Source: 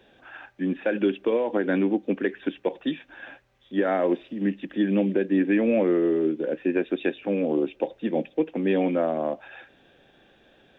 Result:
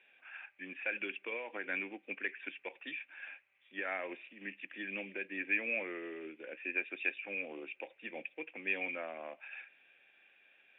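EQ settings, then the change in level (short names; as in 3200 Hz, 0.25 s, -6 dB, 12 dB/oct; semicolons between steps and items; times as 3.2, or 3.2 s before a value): band-pass 2400 Hz, Q 6.6; air absorption 380 m; +10.5 dB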